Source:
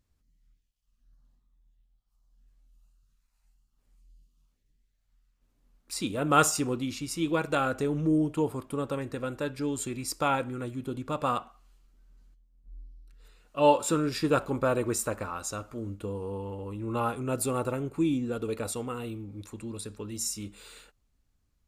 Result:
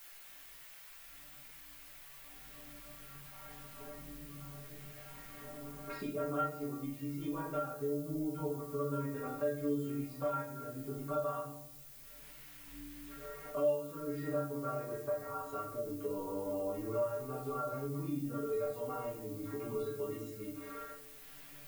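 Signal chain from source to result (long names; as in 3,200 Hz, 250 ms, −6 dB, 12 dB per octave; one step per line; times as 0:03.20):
camcorder AGC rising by 7.9 dB per second
low-pass filter 1,100 Hz 12 dB per octave
spectral tilt +2 dB per octave
mains-hum notches 50/100/150 Hz
stiff-string resonator 140 Hz, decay 0.38 s, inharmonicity 0.008
background noise violet −54 dBFS
rectangular room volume 67 cubic metres, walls mixed, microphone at 1.2 metres
multiband upward and downward compressor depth 70%
level −5.5 dB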